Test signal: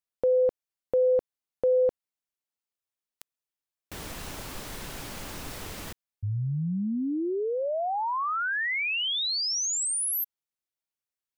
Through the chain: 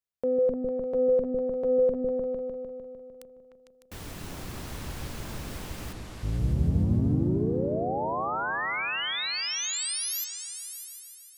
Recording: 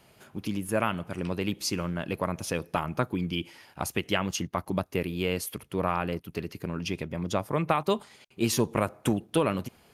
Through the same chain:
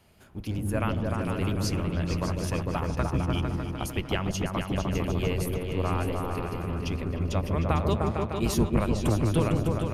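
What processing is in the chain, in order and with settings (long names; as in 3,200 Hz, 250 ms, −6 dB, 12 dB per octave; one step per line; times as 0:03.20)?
sub-octave generator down 1 octave, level +3 dB
echo whose low-pass opens from repeat to repeat 151 ms, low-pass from 400 Hz, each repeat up 2 octaves, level 0 dB
level −4 dB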